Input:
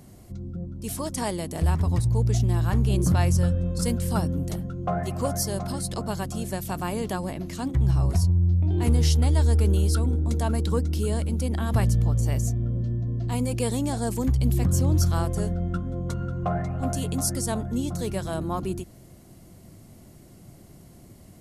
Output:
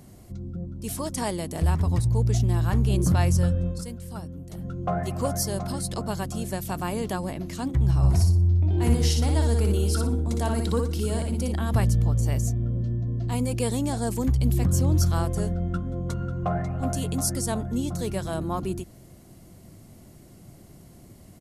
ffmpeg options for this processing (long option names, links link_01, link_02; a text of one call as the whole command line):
ffmpeg -i in.wav -filter_complex "[0:a]asplit=3[link_01][link_02][link_03];[link_01]afade=type=out:start_time=8.02:duration=0.02[link_04];[link_02]aecho=1:1:60|120|180|240:0.596|0.167|0.0467|0.0131,afade=type=in:start_time=8.02:duration=0.02,afade=type=out:start_time=11.51:duration=0.02[link_05];[link_03]afade=type=in:start_time=11.51:duration=0.02[link_06];[link_04][link_05][link_06]amix=inputs=3:normalize=0,asplit=3[link_07][link_08][link_09];[link_07]atrim=end=3.85,asetpts=PTS-STARTPTS,afade=type=out:start_time=3.67:duration=0.18:silence=0.266073[link_10];[link_08]atrim=start=3.85:end=4.51,asetpts=PTS-STARTPTS,volume=-11.5dB[link_11];[link_09]atrim=start=4.51,asetpts=PTS-STARTPTS,afade=type=in:duration=0.18:silence=0.266073[link_12];[link_10][link_11][link_12]concat=n=3:v=0:a=1" out.wav